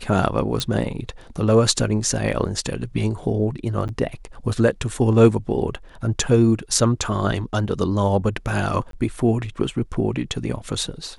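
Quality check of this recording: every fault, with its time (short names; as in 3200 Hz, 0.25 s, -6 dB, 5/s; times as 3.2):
0.6 pop -9 dBFS
3.88–3.89 gap 9.4 ms
8.91–8.93 gap 22 ms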